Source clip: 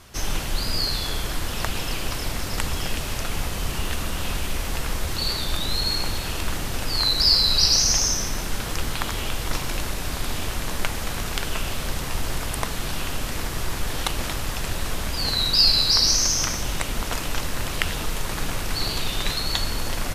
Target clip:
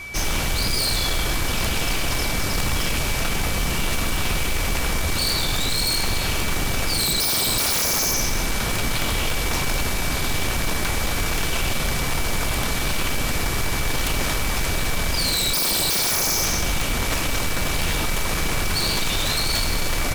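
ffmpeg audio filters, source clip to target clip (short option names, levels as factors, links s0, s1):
-af "acontrast=62,aeval=exprs='0.15*(abs(mod(val(0)/0.15+3,4)-2)-1)':c=same,aeval=exprs='val(0)+0.0224*sin(2*PI*2300*n/s)':c=same"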